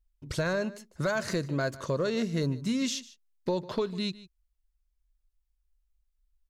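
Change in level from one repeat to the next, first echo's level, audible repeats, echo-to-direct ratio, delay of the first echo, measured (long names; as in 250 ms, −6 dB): repeats not evenly spaced, −18.5 dB, 1, −18.5 dB, 150 ms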